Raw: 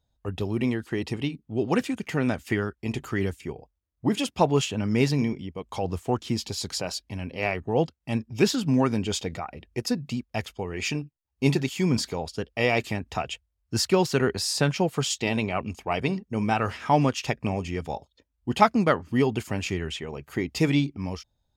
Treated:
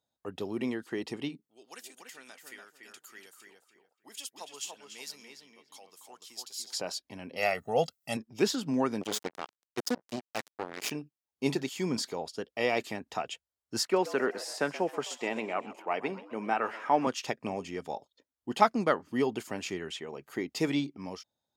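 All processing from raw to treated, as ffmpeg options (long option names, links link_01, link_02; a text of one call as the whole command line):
ffmpeg -i in.wav -filter_complex "[0:a]asettb=1/sr,asplit=3[link_01][link_02][link_03];[link_01]atrim=end=1.474[link_04];[link_02]atrim=start=1.47:end=6.73,asetpts=PTS-STARTPTS,afade=type=in:duration=0.004:curve=qsin,afade=type=out:start_time=5.256:duration=0.004:curve=qsin,aderivative,asplit=2[link_05][link_06];[link_06]adelay=289,lowpass=frequency=2300:poles=1,volume=-3dB,asplit=2[link_07][link_08];[link_08]adelay=289,lowpass=frequency=2300:poles=1,volume=0.28,asplit=2[link_09][link_10];[link_10]adelay=289,lowpass=frequency=2300:poles=1,volume=0.28,asplit=2[link_11][link_12];[link_12]adelay=289,lowpass=frequency=2300:poles=1,volume=0.28[link_13];[link_05][link_07][link_09][link_11][link_13]amix=inputs=5:normalize=0,atrim=end_sample=231966[link_14];[link_03]atrim=start=6.726[link_15];[link_04][link_14]acrossfade=duration=0.004:curve1=hsin:curve2=qsin[link_16];[link_16][link_15]acrossfade=duration=0.004:curve1=qsin:curve2=hsin,asettb=1/sr,asplit=3[link_17][link_18][link_19];[link_17]atrim=end=7.364[link_20];[link_18]atrim=start=7.36:end=8.17,asetpts=PTS-STARTPTS,afade=type=in:duration=0.004:curve=qsin,afade=type=out:start_time=0.806:duration=0.004:curve=qsin,aemphasis=mode=production:type=75kf,aecho=1:1:1.5:0.72,atrim=end_sample=35721[link_21];[link_19]atrim=start=8.166[link_22];[link_20][link_21]acrossfade=duration=0.004:curve1=hsin:curve2=qsin[link_23];[link_23][link_22]acrossfade=duration=0.004:curve1=qsin:curve2=hsin,asettb=1/sr,asplit=3[link_24][link_25][link_26];[link_24]atrim=end=9.014[link_27];[link_25]atrim=start=9.01:end=10.91,asetpts=PTS-STARTPTS,afade=type=in:duration=0.004:curve=qsin,afade=type=out:start_time=1.896:duration=0.004:curve=qsin,aeval=exprs='val(0)+0.5*0.015*sgn(val(0))':channel_layout=same,bandreject=frequency=212.5:width_type=h:width=4,bandreject=frequency=425:width_type=h:width=4,bandreject=frequency=637.5:width_type=h:width=4,bandreject=frequency=850:width_type=h:width=4,bandreject=frequency=1062.5:width_type=h:width=4,bandreject=frequency=1275:width_type=h:width=4,bandreject=frequency=1487.5:width_type=h:width=4,acrusher=bits=3:mix=0:aa=0.5[link_28];[link_26]atrim=start=10.906[link_29];[link_27][link_28]acrossfade=duration=0.004:curve1=hsin:curve2=qsin[link_30];[link_30][link_29]acrossfade=duration=0.004:curve1=qsin:curve2=hsin,asettb=1/sr,asplit=3[link_31][link_32][link_33];[link_31]atrim=end=13.834[link_34];[link_32]atrim=start=13.83:end=17.07,asetpts=PTS-STARTPTS,afade=type=in:duration=0.004:curve=qsin,afade=type=out:start_time=3.236:duration=0.004:curve=qsin,highpass=230,highshelf=frequency=2900:width_type=q:width=1.5:gain=-7,asplit=5[link_35][link_36][link_37][link_38][link_39];[link_36]adelay=130,afreqshift=110,volume=-16.5dB[link_40];[link_37]adelay=260,afreqshift=220,volume=-22.5dB[link_41];[link_38]adelay=390,afreqshift=330,volume=-28.5dB[link_42];[link_39]adelay=520,afreqshift=440,volume=-34.6dB[link_43];[link_35][link_40][link_41][link_42][link_43]amix=inputs=5:normalize=0,atrim=end_sample=142884[link_44];[link_33]atrim=start=17.066[link_45];[link_34][link_44]acrossfade=duration=0.004:curve1=hsin:curve2=qsin[link_46];[link_46][link_45]acrossfade=duration=0.004:curve1=qsin:curve2=hsin,highpass=250,equalizer=frequency=2500:width=2.7:gain=-4,volume=-4dB" out.wav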